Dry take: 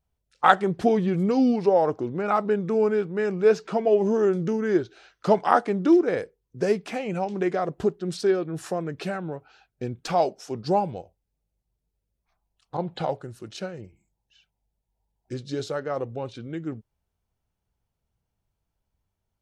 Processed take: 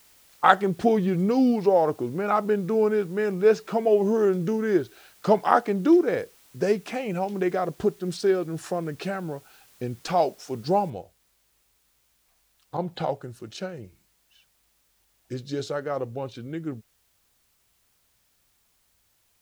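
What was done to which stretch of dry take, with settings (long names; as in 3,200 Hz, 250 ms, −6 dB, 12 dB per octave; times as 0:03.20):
0:10.90: noise floor change −57 dB −68 dB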